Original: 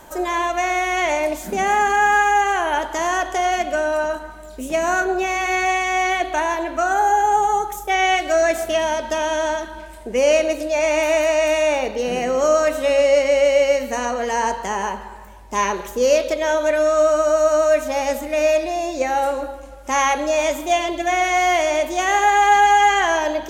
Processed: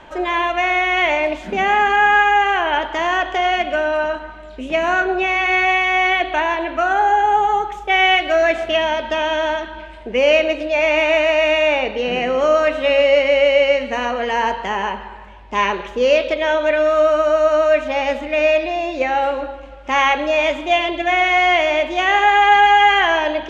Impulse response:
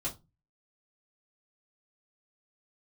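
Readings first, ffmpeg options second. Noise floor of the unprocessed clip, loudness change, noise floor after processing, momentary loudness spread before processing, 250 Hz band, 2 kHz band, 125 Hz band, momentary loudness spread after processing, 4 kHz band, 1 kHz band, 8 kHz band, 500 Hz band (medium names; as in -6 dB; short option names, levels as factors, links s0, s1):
-37 dBFS, +2.5 dB, -36 dBFS, 8 LU, +1.0 dB, +5.0 dB, no reading, 8 LU, +6.0 dB, +1.5 dB, under -10 dB, +1.5 dB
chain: -af "lowpass=f=2900:t=q:w=2.1,volume=1.12"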